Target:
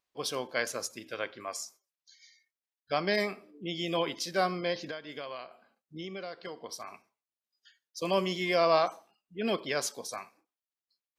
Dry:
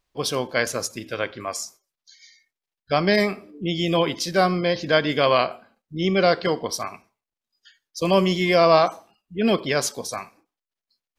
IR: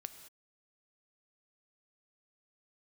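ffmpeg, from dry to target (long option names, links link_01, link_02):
-filter_complex "[0:a]highpass=frequency=300:poles=1,asettb=1/sr,asplit=3[link_01][link_02][link_03];[link_01]atrim=end=4.854[link_04];[link_02]atrim=start=4.85:end=6.88,asetpts=PTS-STARTPTS,afade=type=in:duration=0.004:curve=qsin,afade=type=out:start_time=2.026:duration=0.004:curve=qsin,acompressor=threshold=-29dB:ratio=10[link_05];[link_03]atrim=start=6.876[link_06];[link_04][link_05]acrossfade=duration=0.004:curve1=hsin:curve2=qsin[link_07];[link_07][link_06]acrossfade=duration=0.004:curve1=qsin:curve2=hsin,volume=-8dB"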